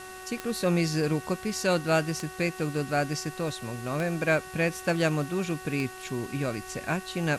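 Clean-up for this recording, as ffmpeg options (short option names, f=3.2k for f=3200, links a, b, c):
-af "adeclick=t=4,bandreject=f=373.1:t=h:w=4,bandreject=f=746.2:t=h:w=4,bandreject=f=1.1193k:t=h:w=4,bandreject=f=1.4924k:t=h:w=4,bandreject=f=1.8655k:t=h:w=4,bandreject=f=2.7k:w=30,afwtdn=0.0045"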